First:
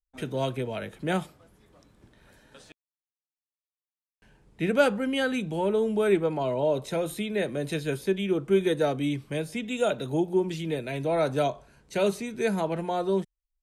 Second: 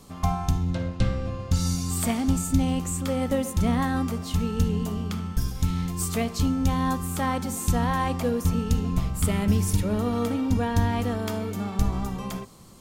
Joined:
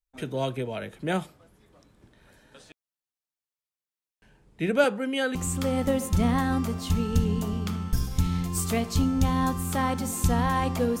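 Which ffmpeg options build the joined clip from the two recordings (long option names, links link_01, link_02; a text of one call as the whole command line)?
ffmpeg -i cue0.wav -i cue1.wav -filter_complex "[0:a]asettb=1/sr,asplit=3[link_01][link_02][link_03];[link_01]atrim=end=4.844[link_04];[link_02]atrim=start=4.84:end=5.35,asetpts=PTS-STARTPTS,afade=type=in:duration=0.004:curve=qsin,afade=type=out:start_time=0.506:duration=0.004:curve=qsin,highpass=210[link_05];[link_03]atrim=start=5.346[link_06];[link_04][link_05]acrossfade=duration=0.004:curve1=hsin:curve2=qsin[link_07];[link_07][link_06]acrossfade=duration=0.004:curve1=qsin:curve2=hsin,apad=whole_dur=11,atrim=end=11,atrim=end=5.352[link_08];[1:a]atrim=start=2.788:end=8.44[link_09];[link_08][link_09]acrossfade=duration=0.004:curve1=hsin:curve2=hsin" out.wav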